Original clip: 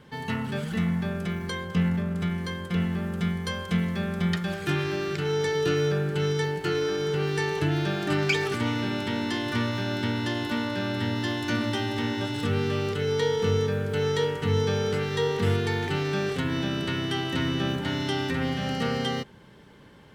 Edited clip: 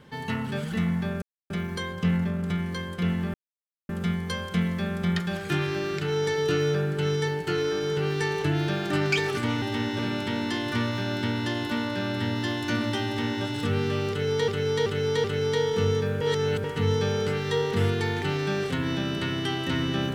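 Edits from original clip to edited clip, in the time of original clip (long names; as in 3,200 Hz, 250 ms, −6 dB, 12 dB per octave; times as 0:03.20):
0:01.22: splice in silence 0.28 s
0:03.06: splice in silence 0.55 s
0:11.86–0:12.23: duplicate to 0:08.79
0:12.90–0:13.28: repeat, 4 plays
0:13.87–0:14.30: reverse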